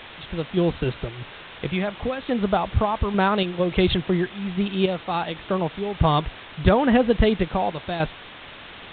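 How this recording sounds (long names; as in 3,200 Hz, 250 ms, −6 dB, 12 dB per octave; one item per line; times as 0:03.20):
sample-and-hold tremolo, depth 75%
a quantiser's noise floor 6 bits, dither triangular
A-law companding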